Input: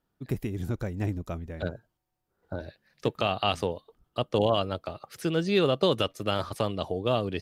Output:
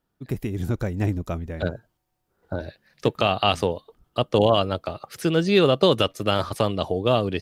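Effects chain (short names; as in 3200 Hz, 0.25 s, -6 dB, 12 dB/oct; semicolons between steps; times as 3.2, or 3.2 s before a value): AGC gain up to 4.5 dB; gain +1.5 dB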